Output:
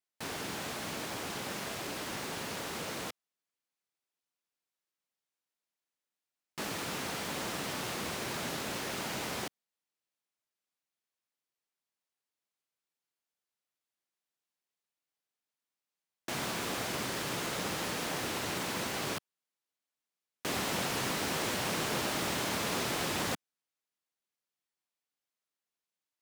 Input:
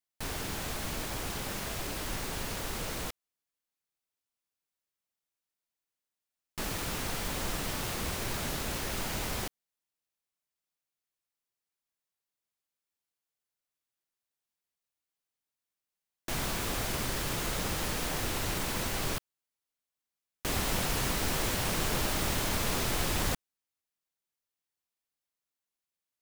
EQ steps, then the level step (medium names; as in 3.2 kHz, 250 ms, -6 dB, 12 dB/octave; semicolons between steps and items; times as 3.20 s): high-pass 160 Hz 12 dB/octave; treble shelf 9.9 kHz -8.5 dB; 0.0 dB